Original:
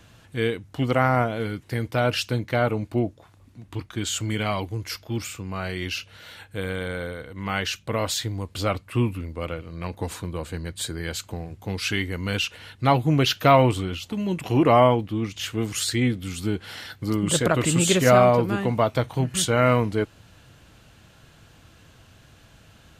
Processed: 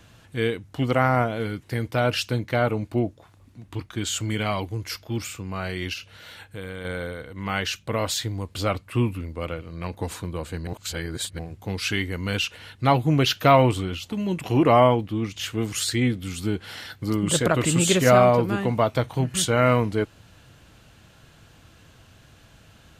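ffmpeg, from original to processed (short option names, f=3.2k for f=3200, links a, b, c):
-filter_complex "[0:a]asettb=1/sr,asplit=3[a][b][c];[a]atrim=end=5.934[d];[b]atrim=start=5.93:end=6.85,asetpts=PTS-STARTPTS,afade=t=in:d=0.004:c=qsin,afade=t=out:st=0.916:d=0.004:c=qsin,acompressor=threshold=-34dB:ratio=2:attack=3.2:release=140:knee=1:detection=peak[e];[c]atrim=start=6.846[f];[d][e]acrossfade=d=0.004:c1=hsin:c2=qsin[g];[g][f]acrossfade=d=0.004:c1=qsin:c2=hsin,asplit=3[h][i][j];[h]atrim=end=10.672[k];[i]atrim=start=10.668:end=11.392,asetpts=PTS-STARTPTS,areverse[l];[j]atrim=start=11.388[m];[k][l]acrossfade=d=0.004:c1=hsin:c2=hsin[n];[n][m]acrossfade=d=0.004:c1=hsin:c2=hsin"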